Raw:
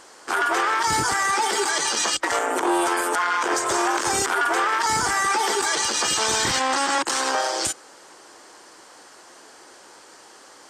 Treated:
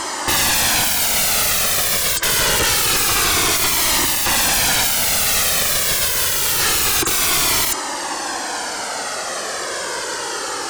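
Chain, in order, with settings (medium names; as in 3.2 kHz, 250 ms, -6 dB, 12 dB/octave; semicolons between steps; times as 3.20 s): sine folder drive 19 dB, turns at -13.5 dBFS; Shepard-style flanger falling 0.26 Hz; trim +4.5 dB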